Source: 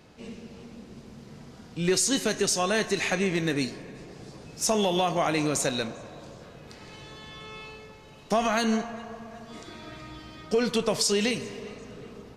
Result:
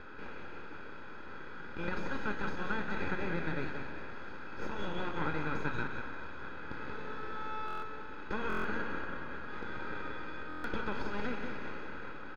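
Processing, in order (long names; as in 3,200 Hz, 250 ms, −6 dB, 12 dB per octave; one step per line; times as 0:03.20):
compressor on every frequency bin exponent 0.6
high-pass filter 1,400 Hz 24 dB per octave
high-shelf EQ 3,600 Hz −9 dB
downward compressor, threshold −32 dBFS, peak gain reduction 7.5 dB
half-wave rectification
high-frequency loss of the air 270 metres
single-tap delay 182 ms −6.5 dB
convolution reverb RT60 0.70 s, pre-delay 3 ms, DRR 12.5 dB
buffer that repeats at 0:07.66/0:08.48/0:10.48, samples 1,024, times 6
level +1.5 dB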